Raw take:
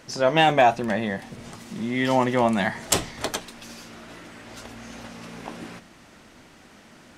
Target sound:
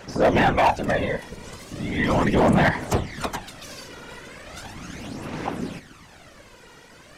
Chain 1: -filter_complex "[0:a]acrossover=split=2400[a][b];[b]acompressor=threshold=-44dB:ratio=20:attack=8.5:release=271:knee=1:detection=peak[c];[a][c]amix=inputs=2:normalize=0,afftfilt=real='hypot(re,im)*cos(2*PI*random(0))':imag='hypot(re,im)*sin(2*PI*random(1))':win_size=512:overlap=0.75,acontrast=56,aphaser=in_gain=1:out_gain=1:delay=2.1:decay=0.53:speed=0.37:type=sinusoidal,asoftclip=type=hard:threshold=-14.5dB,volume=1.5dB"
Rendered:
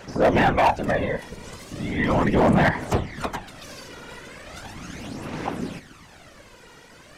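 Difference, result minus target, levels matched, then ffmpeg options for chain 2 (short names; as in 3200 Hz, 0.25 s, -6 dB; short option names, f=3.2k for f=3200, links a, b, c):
compressor: peak gain reduction +6 dB
-filter_complex "[0:a]acrossover=split=2400[a][b];[b]acompressor=threshold=-37.5dB:ratio=20:attack=8.5:release=271:knee=1:detection=peak[c];[a][c]amix=inputs=2:normalize=0,afftfilt=real='hypot(re,im)*cos(2*PI*random(0))':imag='hypot(re,im)*sin(2*PI*random(1))':win_size=512:overlap=0.75,acontrast=56,aphaser=in_gain=1:out_gain=1:delay=2.1:decay=0.53:speed=0.37:type=sinusoidal,asoftclip=type=hard:threshold=-14.5dB,volume=1.5dB"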